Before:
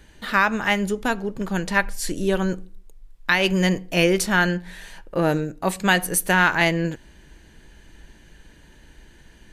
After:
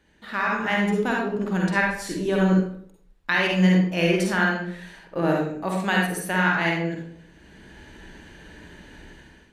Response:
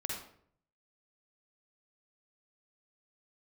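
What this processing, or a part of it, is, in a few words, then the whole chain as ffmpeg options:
far laptop microphone: -filter_complex "[1:a]atrim=start_sample=2205[a];[0:a][a]afir=irnorm=-1:irlink=0,highpass=f=110:p=1,dynaudnorm=f=230:g=5:m=14dB,highshelf=f=5.8k:g=-10,bandreject=f=50:t=h:w=6,bandreject=f=100:t=h:w=6,bandreject=f=150:t=h:w=6,volume=-7.5dB"

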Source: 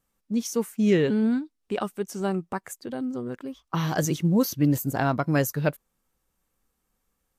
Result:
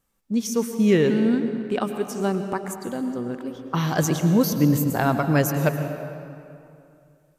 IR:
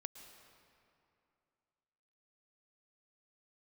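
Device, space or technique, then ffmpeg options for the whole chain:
stairwell: -filter_complex "[1:a]atrim=start_sample=2205[a];[0:a][a]afir=irnorm=-1:irlink=0,volume=7.5dB"

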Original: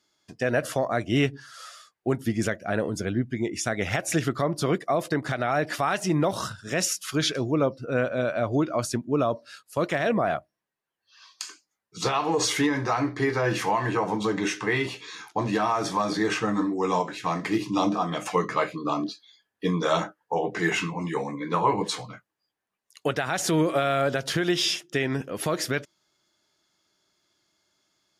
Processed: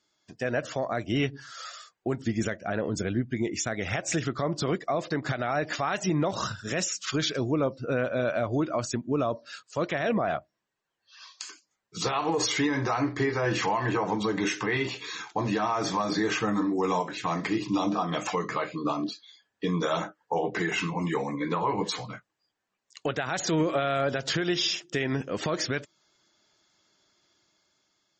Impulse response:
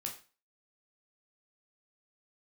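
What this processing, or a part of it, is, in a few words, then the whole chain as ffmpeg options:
low-bitrate web radio: -af "dynaudnorm=f=320:g=7:m=6dB,alimiter=limit=-14.5dB:level=0:latency=1:release=266,volume=-2.5dB" -ar 48000 -c:a libmp3lame -b:a 32k

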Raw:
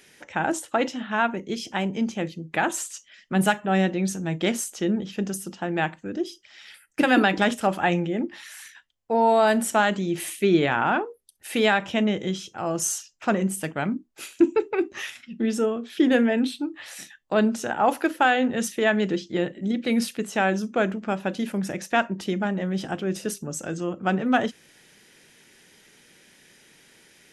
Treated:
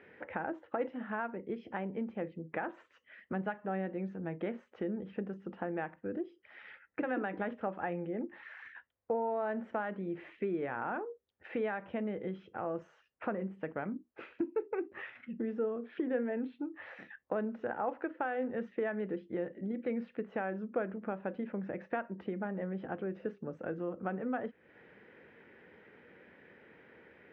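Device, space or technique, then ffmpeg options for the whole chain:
bass amplifier: -af "acompressor=threshold=-39dB:ratio=3,highpass=72,equalizer=f=72:t=q:w=4:g=6,equalizer=f=150:t=q:w=4:g=-5,equalizer=f=490:t=q:w=4:g=7,lowpass=f=2k:w=0.5412,lowpass=f=2k:w=1.3066"

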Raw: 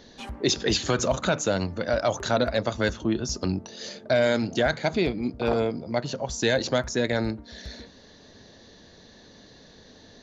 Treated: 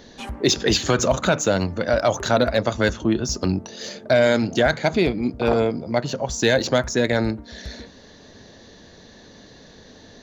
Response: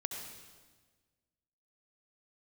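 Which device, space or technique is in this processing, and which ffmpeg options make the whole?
exciter from parts: -filter_complex "[0:a]asplit=2[a][b];[b]highpass=3.8k,asoftclip=type=tanh:threshold=-35dB,highpass=3.7k,volume=-7.5dB[c];[a][c]amix=inputs=2:normalize=0,volume=5dB"

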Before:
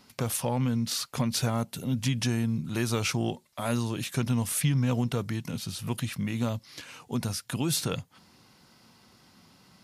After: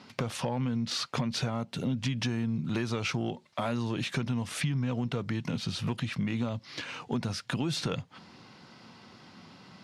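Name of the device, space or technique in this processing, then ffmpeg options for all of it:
AM radio: -af "highpass=100,lowpass=4.2k,acompressor=threshold=-34dB:ratio=6,asoftclip=type=tanh:threshold=-24.5dB,volume=7dB"

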